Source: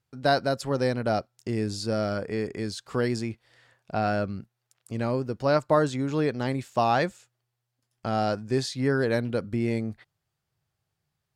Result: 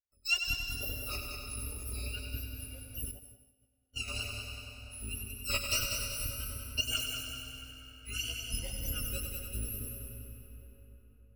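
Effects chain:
samples in bit-reversed order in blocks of 256 samples
noise reduction from a noise print of the clip's start 17 dB
tape wow and flutter 120 cents
harmonic and percussive parts rebalanced harmonic −9 dB
spectral tilt −2.5 dB per octave
gate on every frequency bin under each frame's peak −25 dB strong
hollow resonant body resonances 540/2,800 Hz, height 13 dB, ringing for 35 ms
in parallel at −11 dB: bit reduction 7 bits
on the sum: echo machine with several playback heads 96 ms, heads first and second, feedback 60%, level −8 dB
on a send at −5.5 dB: convolution reverb RT60 4.6 s, pre-delay 100 ms
0:03.11–0:04.08: on the sum: expander for the loud parts 2.5 to 1, over −44 dBFS
level −6.5 dB

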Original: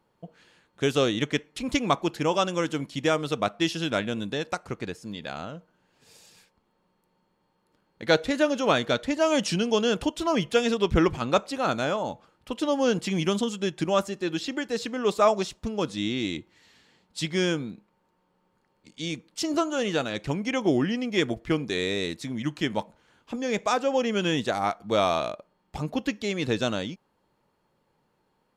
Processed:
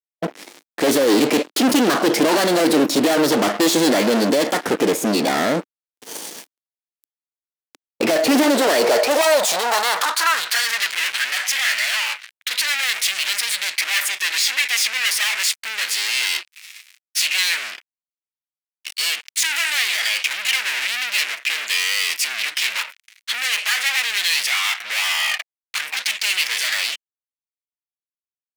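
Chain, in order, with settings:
fuzz pedal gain 46 dB, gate −55 dBFS
formants moved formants +4 semitones
high-pass filter sweep 290 Hz → 2,200 Hz, 0:08.43–0:10.90
level −4.5 dB

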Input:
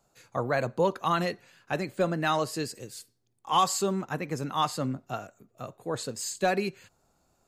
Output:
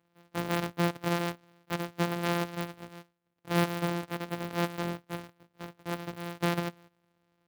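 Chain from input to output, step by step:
samples sorted by size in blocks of 256 samples
band-pass filter 130–4,900 Hz
converter with an unsteady clock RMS 0.022 ms
level −2.5 dB

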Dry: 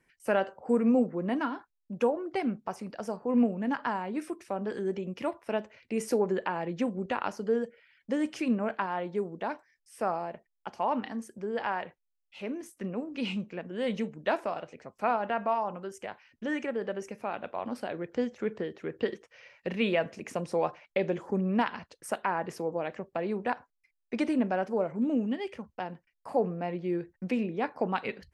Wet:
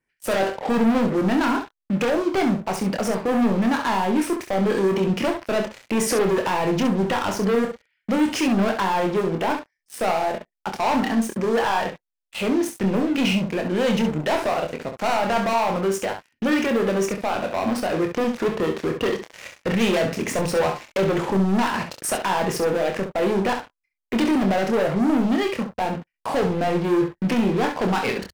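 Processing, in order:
leveller curve on the samples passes 5
brickwall limiter −18.5 dBFS, peak gain reduction 5 dB
ambience of single reflections 26 ms −6 dB, 67 ms −8 dB

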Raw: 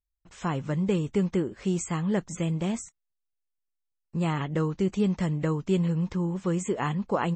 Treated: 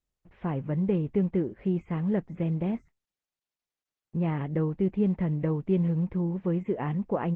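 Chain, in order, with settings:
low-pass filter 2,200 Hz 24 dB per octave
parametric band 1,300 Hz −10 dB 1 octave
Opus 16 kbit/s 48,000 Hz

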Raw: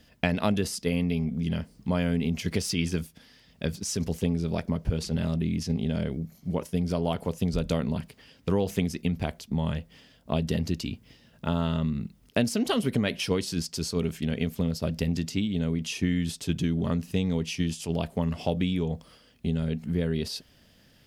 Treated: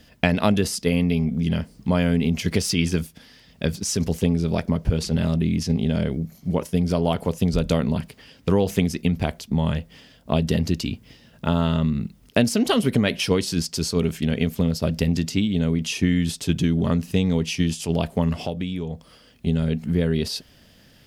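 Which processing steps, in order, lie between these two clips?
0:18.45–0:19.47: downward compressor 1.5 to 1, threshold −43 dBFS, peak gain reduction 8 dB
level +6 dB

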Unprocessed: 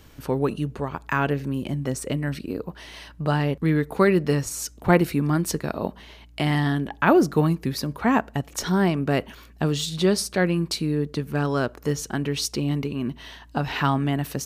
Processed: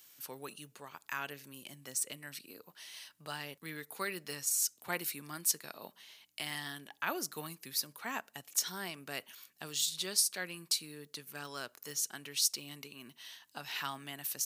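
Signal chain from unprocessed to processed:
high-pass filter 110 Hz 24 dB per octave
first-order pre-emphasis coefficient 0.97

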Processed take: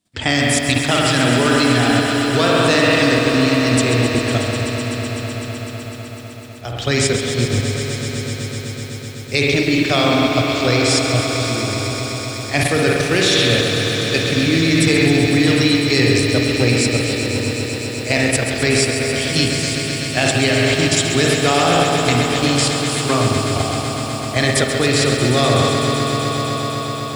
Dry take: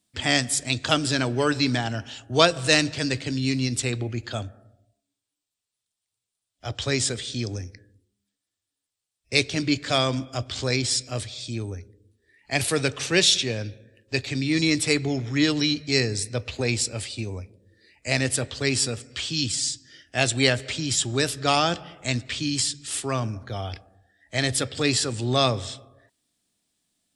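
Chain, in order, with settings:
high-shelf EQ 5,400 Hz −6 dB
spring reverb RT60 1.6 s, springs 49 ms, chirp 25 ms, DRR 1 dB
in parallel at 0 dB: brickwall limiter −14.5 dBFS, peak gain reduction 12 dB
on the sum: output level in coarse steps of 10 dB
on a send: echo that builds up and dies away 126 ms, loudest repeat 5, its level −12.5 dB
on the sum: feedback echo at a low word length 135 ms, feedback 80%, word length 7 bits, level −9 dB
level +4 dB

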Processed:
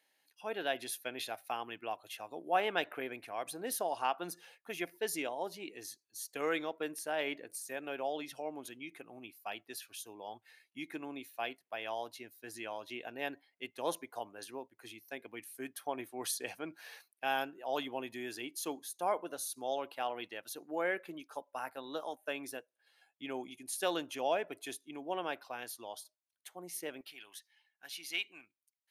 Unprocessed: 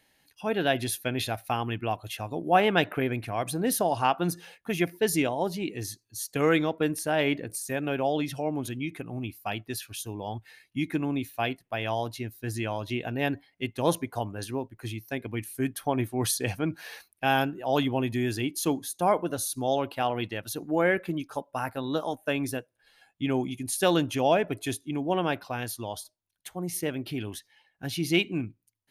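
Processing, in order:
high-pass filter 410 Hz 12 dB per octave, from 0:27.01 1,100 Hz
level −8.5 dB

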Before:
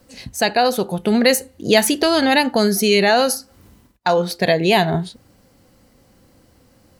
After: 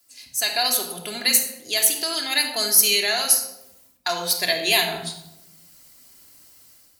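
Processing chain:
first-order pre-emphasis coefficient 0.97
automatic gain control gain up to 11 dB
rectangular room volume 3,100 cubic metres, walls furnished, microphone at 3.1 metres
level −2 dB

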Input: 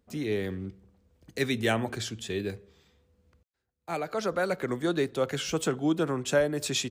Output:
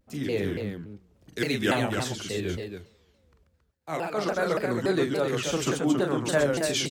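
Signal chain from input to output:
on a send: loudspeakers that aren't time-aligned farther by 14 metres −5 dB, 45 metres −6 dB, 94 metres −6 dB
on the sum: pitch modulation by a square or saw wave saw down 3.5 Hz, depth 250 cents

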